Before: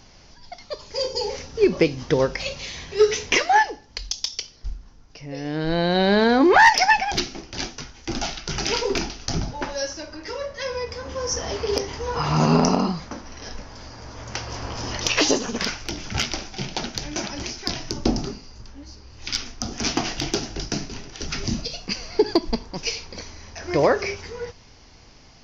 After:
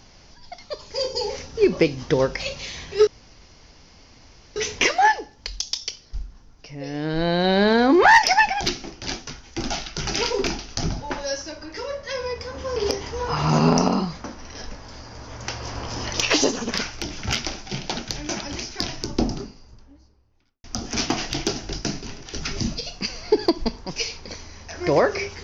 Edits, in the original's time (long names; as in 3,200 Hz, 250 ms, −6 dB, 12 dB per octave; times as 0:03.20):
0:03.07: splice in room tone 1.49 s
0:11.27–0:11.63: remove
0:17.77–0:19.51: fade out and dull